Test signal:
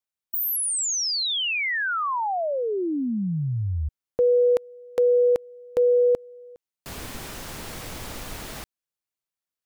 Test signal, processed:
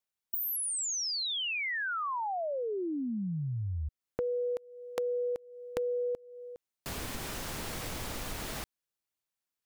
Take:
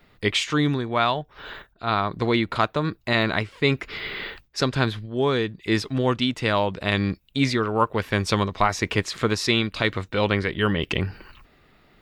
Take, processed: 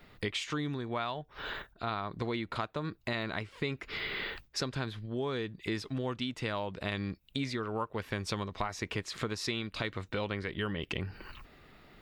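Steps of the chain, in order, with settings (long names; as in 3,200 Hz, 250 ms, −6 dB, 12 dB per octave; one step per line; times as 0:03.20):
downward compressor 4 to 1, threshold −34 dBFS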